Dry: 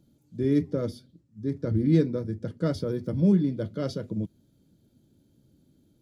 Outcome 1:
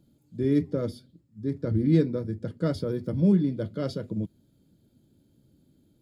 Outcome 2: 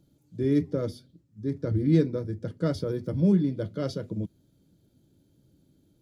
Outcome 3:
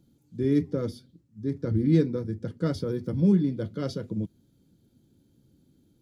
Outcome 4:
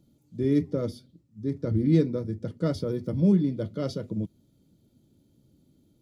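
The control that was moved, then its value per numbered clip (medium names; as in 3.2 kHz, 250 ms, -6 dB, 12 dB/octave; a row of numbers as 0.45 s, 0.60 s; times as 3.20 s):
band-stop, frequency: 5.9 kHz, 230 Hz, 610 Hz, 1.6 kHz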